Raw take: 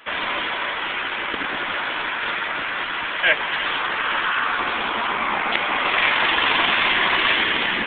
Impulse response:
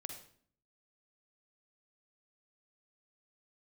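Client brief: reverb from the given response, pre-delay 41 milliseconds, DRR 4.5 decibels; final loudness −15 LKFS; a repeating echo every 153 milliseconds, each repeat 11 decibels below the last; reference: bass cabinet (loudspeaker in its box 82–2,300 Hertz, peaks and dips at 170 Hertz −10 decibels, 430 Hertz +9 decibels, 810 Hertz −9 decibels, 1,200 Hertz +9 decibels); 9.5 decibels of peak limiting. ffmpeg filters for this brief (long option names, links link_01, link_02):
-filter_complex "[0:a]alimiter=limit=-13.5dB:level=0:latency=1,aecho=1:1:153|306|459:0.282|0.0789|0.0221,asplit=2[link_01][link_02];[1:a]atrim=start_sample=2205,adelay=41[link_03];[link_02][link_03]afir=irnorm=-1:irlink=0,volume=-1.5dB[link_04];[link_01][link_04]amix=inputs=2:normalize=0,highpass=frequency=82:width=0.5412,highpass=frequency=82:width=1.3066,equalizer=frequency=170:width_type=q:width=4:gain=-10,equalizer=frequency=430:width_type=q:width=4:gain=9,equalizer=frequency=810:width_type=q:width=4:gain=-9,equalizer=frequency=1200:width_type=q:width=4:gain=9,lowpass=frequency=2300:width=0.5412,lowpass=frequency=2300:width=1.3066,volume=5.5dB"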